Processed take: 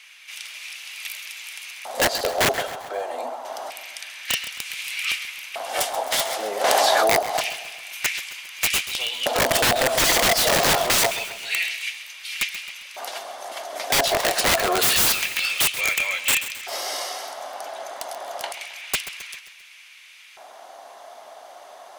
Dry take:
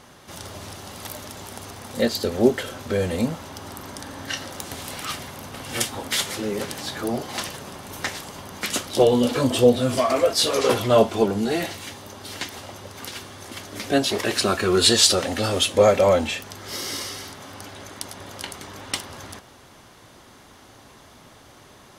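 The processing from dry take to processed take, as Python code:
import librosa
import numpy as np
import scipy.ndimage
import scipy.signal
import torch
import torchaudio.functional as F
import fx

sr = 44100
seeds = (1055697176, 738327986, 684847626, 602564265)

p1 = fx.filter_lfo_highpass(x, sr, shape='square', hz=0.27, low_hz=680.0, high_hz=2400.0, q=6.4)
p2 = 10.0 ** (-4.5 / 20.0) * (np.abs((p1 / 10.0 ** (-4.5 / 20.0) + 3.0) % 4.0 - 2.0) - 1.0)
p3 = fx.cheby_ripple_highpass(p2, sr, hz=240.0, ripple_db=9, at=(2.67, 3.45))
p4 = (np.mod(10.0 ** (13.0 / 20.0) * p3 + 1.0, 2.0) - 1.0) / 10.0 ** (13.0 / 20.0)
p5 = p4 + fx.echo_feedback(p4, sr, ms=133, feedback_pct=50, wet_db=-13, dry=0)
y = fx.env_flatten(p5, sr, amount_pct=100, at=(6.64, 7.19))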